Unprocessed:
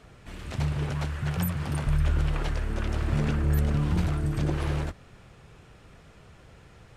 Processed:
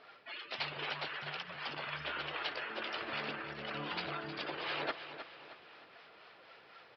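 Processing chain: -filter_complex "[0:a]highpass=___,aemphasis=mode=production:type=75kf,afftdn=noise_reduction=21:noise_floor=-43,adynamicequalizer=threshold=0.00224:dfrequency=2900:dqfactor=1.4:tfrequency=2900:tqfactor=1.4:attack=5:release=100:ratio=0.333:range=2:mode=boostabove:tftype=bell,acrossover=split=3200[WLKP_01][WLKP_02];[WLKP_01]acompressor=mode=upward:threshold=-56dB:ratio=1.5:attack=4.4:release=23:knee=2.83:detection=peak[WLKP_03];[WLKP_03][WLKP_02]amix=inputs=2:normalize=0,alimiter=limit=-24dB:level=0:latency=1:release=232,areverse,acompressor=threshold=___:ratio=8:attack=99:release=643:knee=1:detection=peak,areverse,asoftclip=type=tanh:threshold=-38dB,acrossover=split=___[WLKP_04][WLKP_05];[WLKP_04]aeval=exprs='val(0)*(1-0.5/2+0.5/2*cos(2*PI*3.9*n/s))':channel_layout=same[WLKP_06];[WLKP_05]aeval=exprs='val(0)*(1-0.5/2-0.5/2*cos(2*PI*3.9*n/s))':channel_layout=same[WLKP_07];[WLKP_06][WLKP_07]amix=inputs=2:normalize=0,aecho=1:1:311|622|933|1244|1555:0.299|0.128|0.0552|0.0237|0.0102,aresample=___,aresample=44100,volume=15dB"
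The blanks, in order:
530, -52dB, 720, 11025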